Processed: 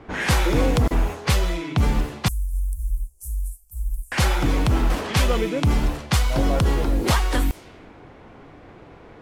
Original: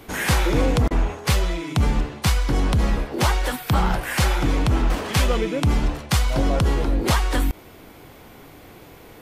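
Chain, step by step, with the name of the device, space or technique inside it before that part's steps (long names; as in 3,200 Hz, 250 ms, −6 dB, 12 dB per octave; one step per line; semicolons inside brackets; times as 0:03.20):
cassette deck with a dynamic noise filter (white noise bed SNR 27 dB; low-pass that shuts in the quiet parts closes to 1,500 Hz, open at −17 dBFS)
0:02.28–0:04.12: inverse Chebyshev band-stop filter 120–4,100 Hz, stop band 50 dB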